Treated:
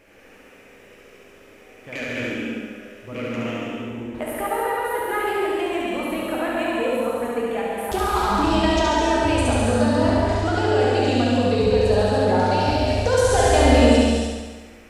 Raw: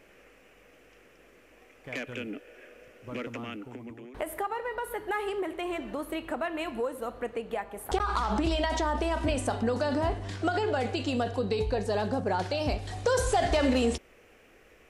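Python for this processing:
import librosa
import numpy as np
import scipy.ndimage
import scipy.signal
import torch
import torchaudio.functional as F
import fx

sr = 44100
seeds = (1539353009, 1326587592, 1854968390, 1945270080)

y = fx.room_flutter(x, sr, wall_m=12.0, rt60_s=1.3)
y = fx.rev_gated(y, sr, seeds[0], gate_ms=340, shape='flat', drr_db=-3.0)
y = F.gain(torch.from_numpy(y), 2.0).numpy()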